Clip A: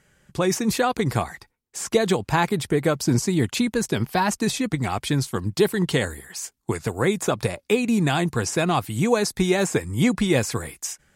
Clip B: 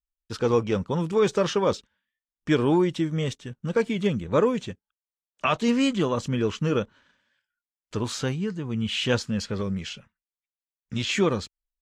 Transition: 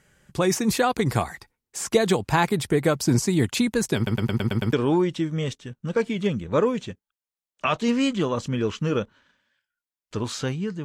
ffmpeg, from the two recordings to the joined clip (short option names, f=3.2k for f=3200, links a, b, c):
-filter_complex "[0:a]apad=whole_dur=10.84,atrim=end=10.84,asplit=7[a][b][c][d][e][f][g];[a]atrim=end=4.072[h];[b]atrim=start=3.958:end=4.072[i];[c]atrim=start=3.958:end=4.072[j];[d]atrim=start=3.958:end=4.072[k];[e]atrim=start=3.958:end=4.072[l];[f]atrim=start=3.958:end=4.072[m];[g]atrim=start=3.958:end=4.072[n];[1:a]atrim=start=2.528:end=8.64[o];[h][i]acrossfade=d=0.004:c1=hsin:c2=hsin[p];[p][j]acrossfade=d=0.004:c1=hsin:c2=hsin[q];[q][k]acrossfade=d=0.004:c1=hsin:c2=hsin[r];[r][l]acrossfade=d=0.004:c1=hsin:c2=hsin[s];[s][m]acrossfade=d=0.004:c1=hsin:c2=hsin[t];[t][n]acrossfade=d=0.004:c1=hsin:c2=hsin[u];[u][o]acrossfade=d=0.004:c1=hsin:c2=hsin"